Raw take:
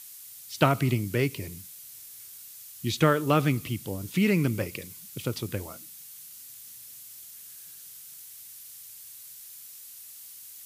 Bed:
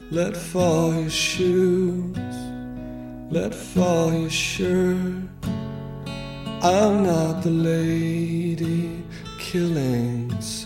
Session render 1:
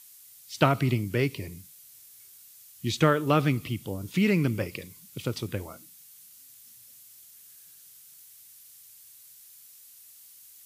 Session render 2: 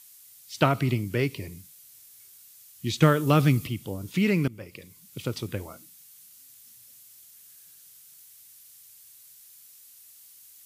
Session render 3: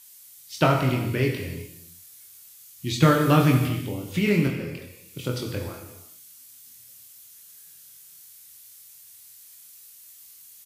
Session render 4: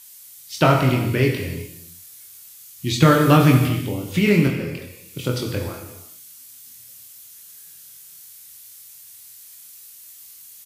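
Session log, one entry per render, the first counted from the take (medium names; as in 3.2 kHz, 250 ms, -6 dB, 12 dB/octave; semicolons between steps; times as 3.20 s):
noise print and reduce 6 dB
3.02–3.67 s: tone controls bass +6 dB, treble +7 dB; 4.48–5.20 s: fade in, from -18.5 dB
doubling 24 ms -5 dB; gated-style reverb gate 430 ms falling, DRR 3 dB
trim +5 dB; peak limiter -1 dBFS, peak gain reduction 2.5 dB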